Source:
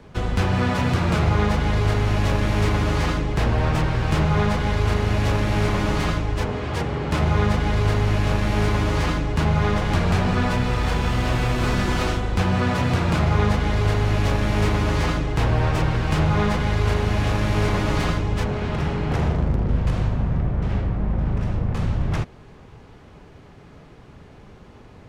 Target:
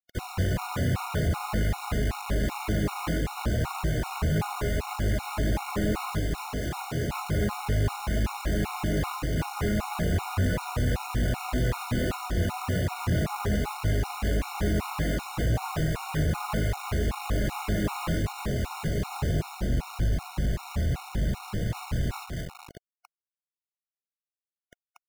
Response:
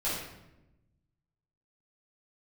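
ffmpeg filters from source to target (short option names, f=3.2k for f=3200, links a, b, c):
-filter_complex "[0:a]aemphasis=mode=reproduction:type=50fm,asplit=2[a][b];[b]adelay=227,lowpass=f=2.7k:p=1,volume=-7dB,asplit=2[c][d];[d]adelay=227,lowpass=f=2.7k:p=1,volume=0.32,asplit=2[e][f];[f]adelay=227,lowpass=f=2.7k:p=1,volume=0.32,asplit=2[g][h];[h]adelay=227,lowpass=f=2.7k:p=1,volume=0.32[i];[a][c][e][g][i]amix=inputs=5:normalize=0,flanger=delay=18:depth=7.1:speed=1.8,aresample=11025,asoftclip=type=tanh:threshold=-18.5dB,aresample=44100,acrusher=bits=5:mix=0:aa=0.000001,afftfilt=real='re*gt(sin(2*PI*2.6*pts/sr)*(1-2*mod(floor(b*sr/1024/730),2)),0)':imag='im*gt(sin(2*PI*2.6*pts/sr)*(1-2*mod(floor(b*sr/1024/730),2)),0)':win_size=1024:overlap=0.75"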